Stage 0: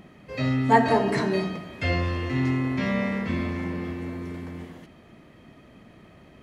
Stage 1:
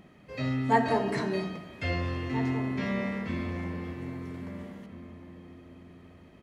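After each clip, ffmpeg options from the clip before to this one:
-filter_complex "[0:a]asplit=2[s0][s1];[s1]adelay=1633,volume=0.251,highshelf=f=4000:g=-36.7[s2];[s0][s2]amix=inputs=2:normalize=0,volume=0.531"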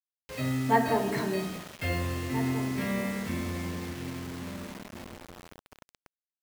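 -af "acrusher=bits=6:mix=0:aa=0.000001"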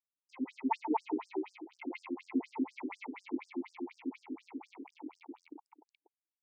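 -filter_complex "[0:a]aeval=exprs='if(lt(val(0),0),0.251*val(0),val(0))':c=same,asplit=3[s0][s1][s2];[s0]bandpass=f=300:t=q:w=8,volume=1[s3];[s1]bandpass=f=870:t=q:w=8,volume=0.501[s4];[s2]bandpass=f=2240:t=q:w=8,volume=0.355[s5];[s3][s4][s5]amix=inputs=3:normalize=0,afftfilt=real='re*between(b*sr/1024,310*pow(6900/310,0.5+0.5*sin(2*PI*4.1*pts/sr))/1.41,310*pow(6900/310,0.5+0.5*sin(2*PI*4.1*pts/sr))*1.41)':imag='im*between(b*sr/1024,310*pow(6900/310,0.5+0.5*sin(2*PI*4.1*pts/sr))/1.41,310*pow(6900/310,0.5+0.5*sin(2*PI*4.1*pts/sr))*1.41)':win_size=1024:overlap=0.75,volume=6.31"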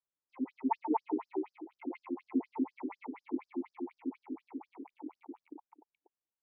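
-af "lowpass=1400,volume=1.12"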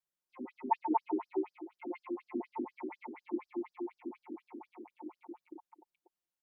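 -af "aecho=1:1:5.6:0.87,volume=0.794"

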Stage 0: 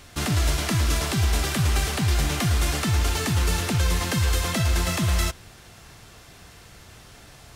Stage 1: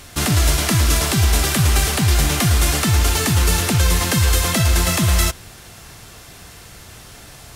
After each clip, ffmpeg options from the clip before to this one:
-af "equalizer=f=13000:w=0.48:g=6,volume=2"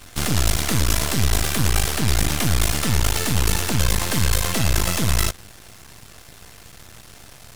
-af "aeval=exprs='max(val(0),0)':c=same"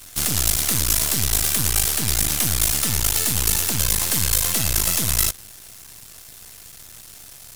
-af "crystalizer=i=3:c=0,volume=0.501"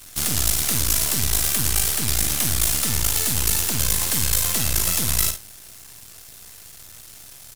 -af "aecho=1:1:50|72:0.335|0.188,volume=0.841"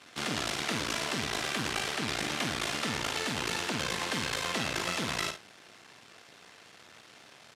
-af "highpass=240,lowpass=2900"

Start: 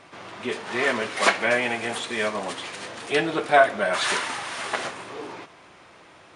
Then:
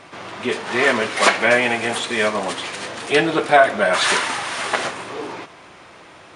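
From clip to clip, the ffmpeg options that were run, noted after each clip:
-af "alimiter=level_in=2.37:limit=0.891:release=50:level=0:latency=1,volume=0.891"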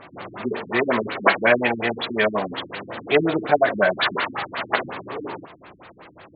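-af "afftfilt=real='re*lt(b*sr/1024,310*pow(4800/310,0.5+0.5*sin(2*PI*5.5*pts/sr)))':imag='im*lt(b*sr/1024,310*pow(4800/310,0.5+0.5*sin(2*PI*5.5*pts/sr)))':win_size=1024:overlap=0.75"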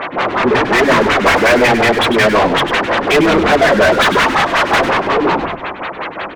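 -filter_complex "[0:a]asplit=2[s0][s1];[s1]highpass=f=720:p=1,volume=44.7,asoftclip=type=tanh:threshold=0.794[s2];[s0][s2]amix=inputs=2:normalize=0,lowpass=f=2800:p=1,volume=0.501,asplit=5[s3][s4][s5][s6][s7];[s4]adelay=99,afreqshift=-120,volume=0.355[s8];[s5]adelay=198,afreqshift=-240,volume=0.127[s9];[s6]adelay=297,afreqshift=-360,volume=0.0462[s10];[s7]adelay=396,afreqshift=-480,volume=0.0166[s11];[s3][s8][s9][s10][s11]amix=inputs=5:normalize=0,volume=0.891"

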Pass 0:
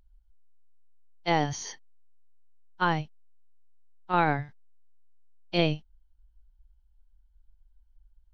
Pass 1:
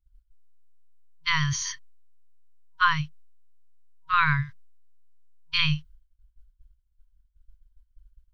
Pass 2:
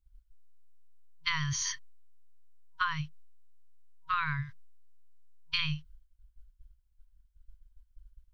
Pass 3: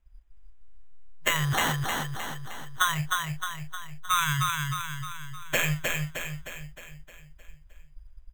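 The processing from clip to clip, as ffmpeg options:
-af "afftfilt=real='re*(1-between(b*sr/4096,160,950))':imag='im*(1-between(b*sr/4096,160,950))':win_size=4096:overlap=0.75,agate=range=0.0224:threshold=0.00316:ratio=3:detection=peak,volume=2.37"
-af "acompressor=threshold=0.0398:ratio=6"
-af "acrusher=samples=9:mix=1:aa=0.000001,aecho=1:1:309|618|927|1236|1545|1854|2163:0.668|0.348|0.181|0.094|0.0489|0.0254|0.0132,volume=2"

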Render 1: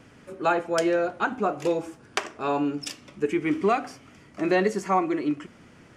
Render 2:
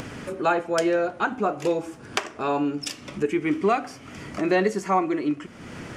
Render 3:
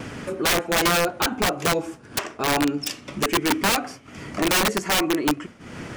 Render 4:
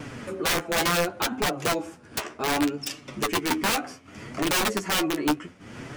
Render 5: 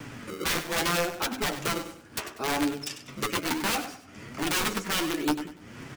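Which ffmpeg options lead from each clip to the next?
-af "acompressor=mode=upward:threshold=0.0562:ratio=2.5,volume=1.12"
-af "agate=range=0.0224:threshold=0.0158:ratio=3:detection=peak,aeval=exprs='(mod(7.5*val(0)+1,2)-1)/7.5':c=same,volume=1.41"
-af "flanger=delay=6.5:depth=7.7:regen=28:speed=0.67:shape=triangular"
-filter_complex "[0:a]acrossover=split=240|680|5500[s0][s1][s2][s3];[s1]acrusher=samples=29:mix=1:aa=0.000001:lfo=1:lforange=46.4:lforate=0.69[s4];[s0][s4][s2][s3]amix=inputs=4:normalize=0,aecho=1:1:97|194|291:0.266|0.0878|0.029,volume=0.708"

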